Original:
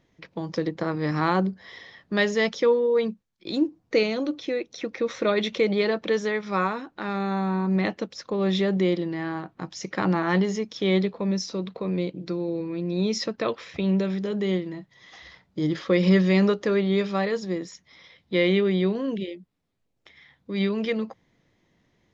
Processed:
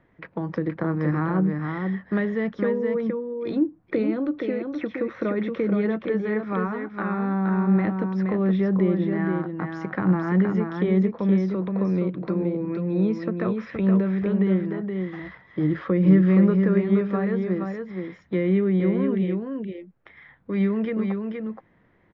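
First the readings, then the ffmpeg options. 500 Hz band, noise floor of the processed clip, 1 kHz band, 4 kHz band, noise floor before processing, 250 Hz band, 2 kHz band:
−1.5 dB, −60 dBFS, −2.5 dB, below −15 dB, −69 dBFS, +4.0 dB, −4.0 dB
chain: -filter_complex "[0:a]acrossover=split=320[link_01][link_02];[link_02]acompressor=threshold=-36dB:ratio=6[link_03];[link_01][link_03]amix=inputs=2:normalize=0,lowpass=frequency=1600:width_type=q:width=1.7,aecho=1:1:471:0.562,volume=4dB"

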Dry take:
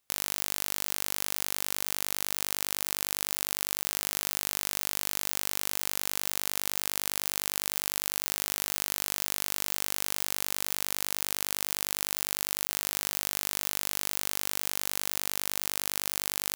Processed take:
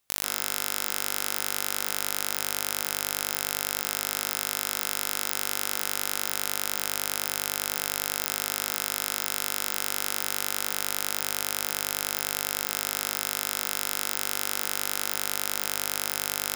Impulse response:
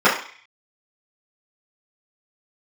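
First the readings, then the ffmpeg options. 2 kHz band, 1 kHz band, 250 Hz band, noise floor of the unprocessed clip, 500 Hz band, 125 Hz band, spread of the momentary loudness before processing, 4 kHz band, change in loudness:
+4.0 dB, +5.5 dB, +3.0 dB, −33 dBFS, +4.5 dB, +1.5 dB, 0 LU, +2.5 dB, +2.5 dB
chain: -filter_complex "[0:a]asplit=2[link_01][link_02];[1:a]atrim=start_sample=2205,atrim=end_sample=3969,adelay=133[link_03];[link_02][link_03]afir=irnorm=-1:irlink=0,volume=-26dB[link_04];[link_01][link_04]amix=inputs=2:normalize=0,volume=2dB"

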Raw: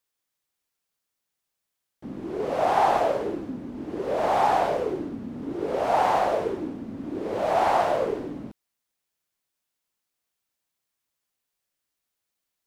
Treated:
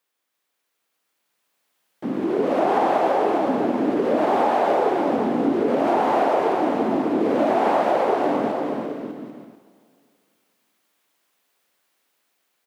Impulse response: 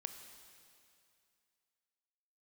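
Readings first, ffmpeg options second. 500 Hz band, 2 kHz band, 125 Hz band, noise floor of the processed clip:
+5.5 dB, +3.5 dB, +3.0 dB, −77 dBFS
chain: -filter_complex "[0:a]highpass=240,acompressor=threshold=-34dB:ratio=6,aecho=1:1:340|595|786.2|929.7|1037:0.631|0.398|0.251|0.158|0.1,asplit=2[link_01][link_02];[1:a]atrim=start_sample=2205,lowpass=4100[link_03];[link_02][link_03]afir=irnorm=-1:irlink=0,volume=1.5dB[link_04];[link_01][link_04]amix=inputs=2:normalize=0,dynaudnorm=framelen=340:gausssize=9:maxgain=6.5dB,volume=3dB"

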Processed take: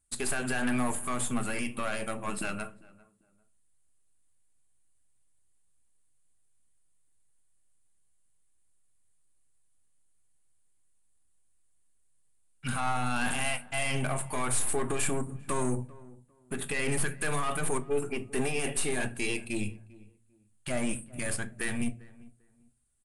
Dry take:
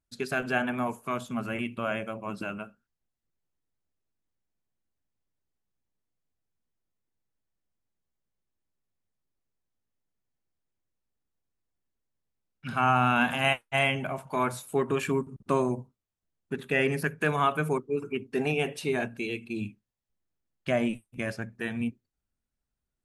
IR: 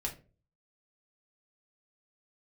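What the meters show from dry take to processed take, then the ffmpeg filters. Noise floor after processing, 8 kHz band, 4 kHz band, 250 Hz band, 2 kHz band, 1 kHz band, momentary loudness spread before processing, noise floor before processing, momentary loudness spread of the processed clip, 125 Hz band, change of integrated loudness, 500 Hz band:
−66 dBFS, +14.0 dB, −2.0 dB, −2.5 dB, −3.5 dB, −5.5 dB, 11 LU, below −85 dBFS, 7 LU, −2.0 dB, −3.0 dB, −5.0 dB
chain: -filter_complex "[0:a]equalizer=frequency=370:width=0.47:gain=-5.5,acontrast=82,alimiter=limit=-19.5dB:level=0:latency=1:release=19,aexciter=amount=10.7:drive=4.9:freq=8000,aeval=exprs='(tanh(17.8*val(0)+0.45)-tanh(0.45))/17.8':channel_layout=same,asplit=2[link_01][link_02];[link_02]adelay=397,lowpass=frequency=1200:poles=1,volume=-20.5dB,asplit=2[link_03][link_04];[link_04]adelay=397,lowpass=frequency=1200:poles=1,volume=0.27[link_05];[link_01][link_03][link_05]amix=inputs=3:normalize=0,asplit=2[link_06][link_07];[1:a]atrim=start_sample=2205[link_08];[link_07][link_08]afir=irnorm=-1:irlink=0,volume=-6dB[link_09];[link_06][link_09]amix=inputs=2:normalize=0,aresample=22050,aresample=44100,volume=-2.5dB"

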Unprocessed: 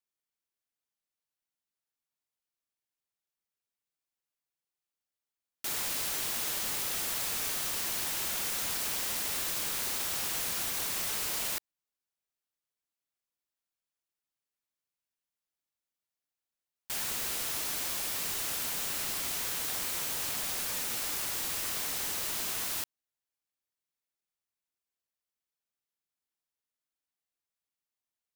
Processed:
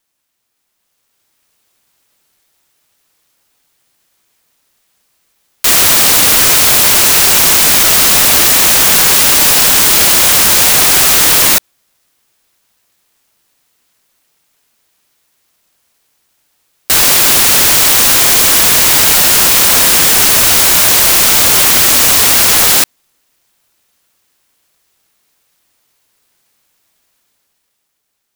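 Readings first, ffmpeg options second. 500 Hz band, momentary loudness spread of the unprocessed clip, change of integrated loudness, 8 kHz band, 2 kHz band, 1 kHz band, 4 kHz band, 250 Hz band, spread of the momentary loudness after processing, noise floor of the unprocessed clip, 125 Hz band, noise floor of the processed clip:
+26.0 dB, 1 LU, +26.0 dB, +26.0 dB, +26.0 dB, +26.0 dB, +26.0 dB, +26.0 dB, 1 LU, below −85 dBFS, +26.0 dB, −67 dBFS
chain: -af "dynaudnorm=framelen=170:gausssize=13:maxgain=9.5dB,aeval=exprs='0.335*sin(PI/2*4.47*val(0)/0.335)':channel_layout=same,aeval=exprs='val(0)*sin(2*PI*570*n/s+570*0.55/1.7*sin(2*PI*1.7*n/s))':channel_layout=same,volume=8dB"

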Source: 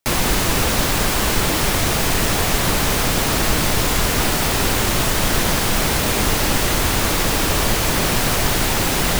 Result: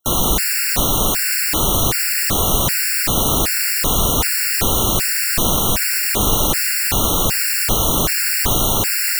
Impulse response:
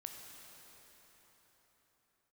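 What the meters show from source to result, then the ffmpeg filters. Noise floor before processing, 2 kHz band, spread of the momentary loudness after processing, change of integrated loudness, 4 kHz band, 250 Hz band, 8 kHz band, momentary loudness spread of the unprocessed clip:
−19 dBFS, −1.5 dB, 1 LU, +2.0 dB, 0.0 dB, −2.0 dB, +3.0 dB, 0 LU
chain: -filter_complex "[0:a]crystalizer=i=1:c=0,asplit=2[link_01][link_02];[1:a]atrim=start_sample=2205[link_03];[link_02][link_03]afir=irnorm=-1:irlink=0,volume=1.5dB[link_04];[link_01][link_04]amix=inputs=2:normalize=0,afftfilt=real='re*gt(sin(2*PI*1.3*pts/sr)*(1-2*mod(floor(b*sr/1024/1400),2)),0)':imag='im*gt(sin(2*PI*1.3*pts/sr)*(1-2*mod(floor(b*sr/1024/1400),2)),0)':win_size=1024:overlap=0.75,volume=-3.5dB"

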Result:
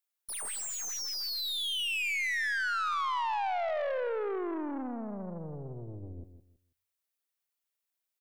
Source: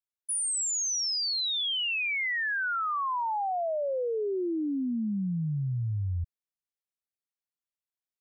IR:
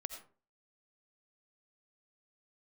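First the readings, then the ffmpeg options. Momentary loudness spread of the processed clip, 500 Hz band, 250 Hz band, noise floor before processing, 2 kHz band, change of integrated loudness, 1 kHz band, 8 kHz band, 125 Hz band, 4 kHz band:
13 LU, −2.5 dB, −7.5 dB, below −85 dBFS, −1.5 dB, −3.5 dB, −1.5 dB, −8.0 dB, −13.5 dB, −4.5 dB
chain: -filter_complex "[0:a]crystalizer=i=2.5:c=0,asplit=2[link_01][link_02];[link_02]equalizer=frequency=62:width_type=o:width=0.37:gain=-9[link_03];[1:a]atrim=start_sample=2205[link_04];[link_03][link_04]afir=irnorm=-1:irlink=0,volume=0dB[link_05];[link_01][link_05]amix=inputs=2:normalize=0,aeval=exprs='(tanh(31.6*val(0)+0.45)-tanh(0.45))/31.6':channel_layout=same,bass=frequency=250:gain=-13,treble=frequency=4000:gain=-8,aecho=1:1:162|324|486:0.299|0.0716|0.0172"

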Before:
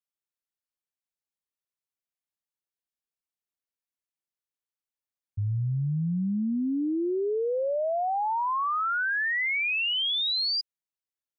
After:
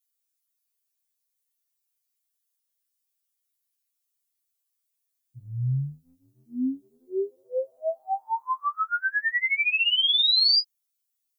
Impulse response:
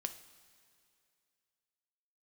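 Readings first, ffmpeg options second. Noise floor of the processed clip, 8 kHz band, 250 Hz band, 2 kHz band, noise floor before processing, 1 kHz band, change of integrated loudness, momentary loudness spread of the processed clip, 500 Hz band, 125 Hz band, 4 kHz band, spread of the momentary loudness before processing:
−80 dBFS, can't be measured, −5.5 dB, +1.5 dB, below −85 dBFS, −2.0 dB, +3.0 dB, 16 LU, −3.5 dB, −2.0 dB, +6.0 dB, 5 LU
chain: -af "crystalizer=i=6:c=0,afftfilt=real='re*2.45*eq(mod(b,6),0)':imag='im*2.45*eq(mod(b,6),0)':win_size=2048:overlap=0.75,volume=-2.5dB"

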